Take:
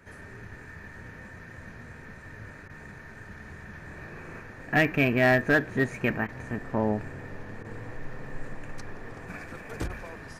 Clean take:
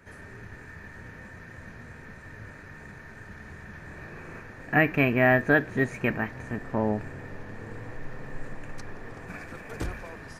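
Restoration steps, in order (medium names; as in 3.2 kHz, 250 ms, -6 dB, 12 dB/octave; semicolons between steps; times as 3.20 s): clip repair -14.5 dBFS; interpolate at 2.68/6.27/7.63/9.88 s, 15 ms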